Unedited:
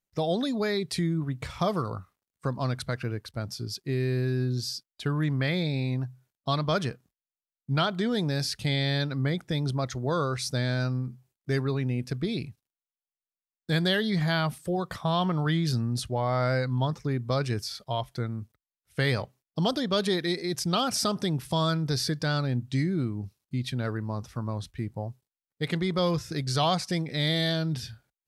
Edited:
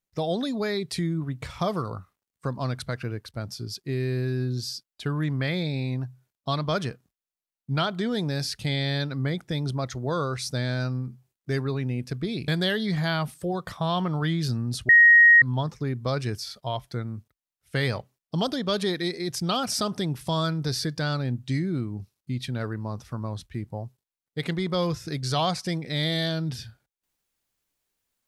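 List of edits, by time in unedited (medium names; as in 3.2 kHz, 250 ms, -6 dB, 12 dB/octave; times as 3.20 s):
12.48–13.72 s: delete
16.13–16.66 s: bleep 1.88 kHz -10.5 dBFS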